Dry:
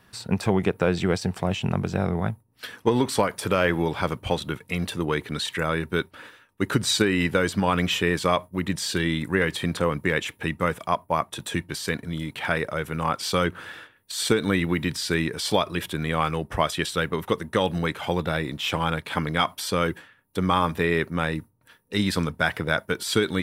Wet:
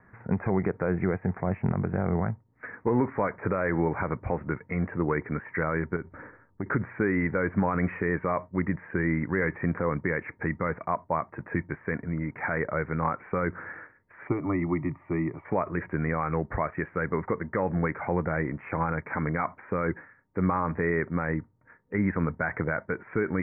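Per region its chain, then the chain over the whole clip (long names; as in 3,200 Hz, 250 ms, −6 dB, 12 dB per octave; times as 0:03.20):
0:05.96–0:06.66: low-pass that shuts in the quiet parts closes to 1,200 Hz, open at −23.5 dBFS + spectral tilt −2.5 dB per octave + downward compressor 16 to 1, threshold −27 dBFS
0:14.27–0:15.45: parametric band 1,200 Hz +9 dB 0.24 octaves + phaser with its sweep stopped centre 310 Hz, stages 8
whole clip: brickwall limiter −14.5 dBFS; Butterworth low-pass 2,200 Hz 96 dB per octave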